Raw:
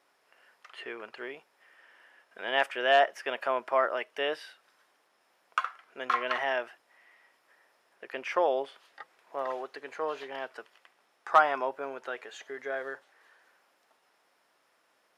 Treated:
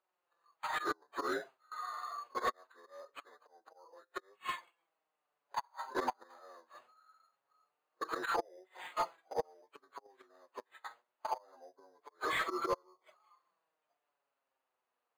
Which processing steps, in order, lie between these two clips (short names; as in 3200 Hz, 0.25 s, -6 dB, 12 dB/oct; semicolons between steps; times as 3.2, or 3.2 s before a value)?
inharmonic rescaling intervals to 80%; spectral noise reduction 13 dB; gate with hold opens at -54 dBFS; high shelf 5100 Hz +6.5 dB; auto swell 0.233 s; flipped gate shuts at -35 dBFS, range -42 dB; careless resampling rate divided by 8×, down none, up hold; flange 0.23 Hz, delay 5.3 ms, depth 3.3 ms, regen +16%; overdrive pedal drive 17 dB, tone 1500 Hz, clips at -34.5 dBFS; gain +14 dB